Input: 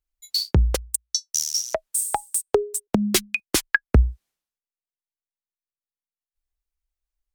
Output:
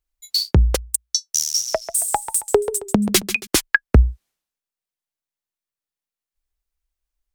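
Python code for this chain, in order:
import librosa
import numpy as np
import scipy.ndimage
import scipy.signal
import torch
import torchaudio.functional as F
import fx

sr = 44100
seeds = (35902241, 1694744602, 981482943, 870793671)

y = fx.echo_warbled(x, sr, ms=137, feedback_pct=36, rate_hz=2.8, cents=136, wet_db=-11, at=(1.42, 3.47))
y = y * librosa.db_to_amplitude(3.5)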